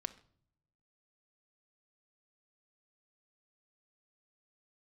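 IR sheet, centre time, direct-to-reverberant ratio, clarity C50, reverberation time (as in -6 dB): 4 ms, 8.5 dB, 16.5 dB, 0.55 s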